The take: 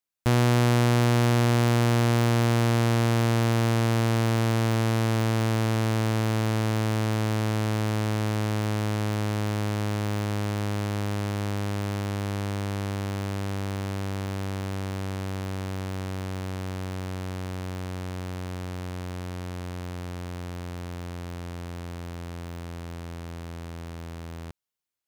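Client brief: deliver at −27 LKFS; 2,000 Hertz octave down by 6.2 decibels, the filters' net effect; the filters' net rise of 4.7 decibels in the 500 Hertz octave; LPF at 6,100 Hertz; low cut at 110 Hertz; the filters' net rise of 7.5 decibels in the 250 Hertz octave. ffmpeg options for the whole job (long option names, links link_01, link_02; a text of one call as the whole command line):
ffmpeg -i in.wav -af "highpass=110,lowpass=6100,equalizer=frequency=250:width_type=o:gain=8.5,equalizer=frequency=500:width_type=o:gain=3.5,equalizer=frequency=2000:width_type=o:gain=-8.5,volume=-3dB" out.wav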